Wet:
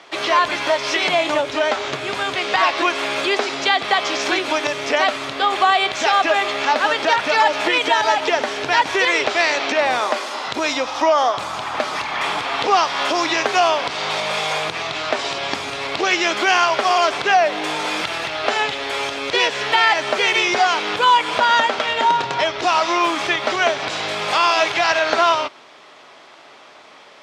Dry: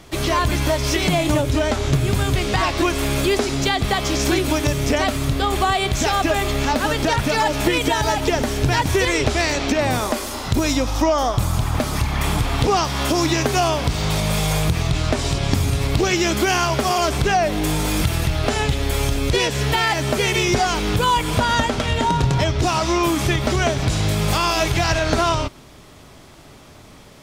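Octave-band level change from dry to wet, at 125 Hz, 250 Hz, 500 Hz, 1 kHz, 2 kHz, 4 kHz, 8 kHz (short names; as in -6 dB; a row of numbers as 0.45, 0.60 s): -22.5, -7.5, +0.5, +4.5, +5.0, +3.0, -5.0 dB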